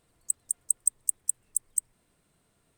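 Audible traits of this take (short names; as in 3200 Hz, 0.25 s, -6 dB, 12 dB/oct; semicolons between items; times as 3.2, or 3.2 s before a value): noise floor -71 dBFS; spectral tilt +2.0 dB/oct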